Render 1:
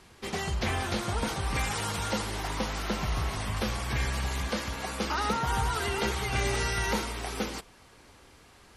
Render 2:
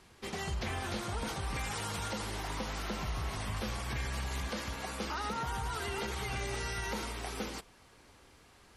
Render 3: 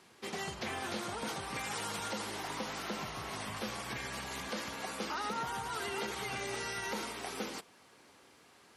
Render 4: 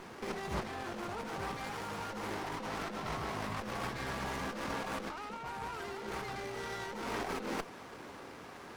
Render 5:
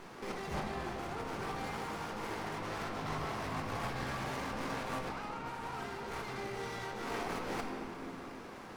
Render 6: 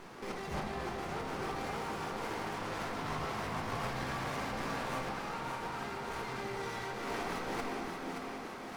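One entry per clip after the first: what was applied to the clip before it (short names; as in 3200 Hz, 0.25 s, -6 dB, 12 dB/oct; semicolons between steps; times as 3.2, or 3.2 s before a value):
limiter -23 dBFS, peak gain reduction 7 dB; gain -4.5 dB
HPF 180 Hz 12 dB/oct
high shelf 5200 Hz -9.5 dB; negative-ratio compressor -47 dBFS, ratio -1; running maximum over 9 samples; gain +8 dB
shoebox room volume 130 m³, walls hard, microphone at 0.36 m; gain -2.5 dB
thinning echo 0.575 s, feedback 61%, high-pass 210 Hz, level -5.5 dB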